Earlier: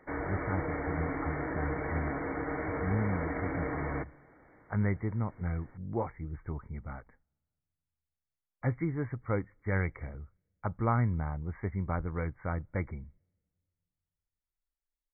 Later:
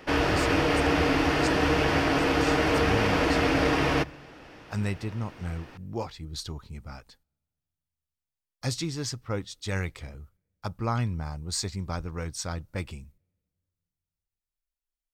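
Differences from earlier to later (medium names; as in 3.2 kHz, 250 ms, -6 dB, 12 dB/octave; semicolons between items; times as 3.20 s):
background +11.0 dB; master: remove brick-wall FIR low-pass 2.3 kHz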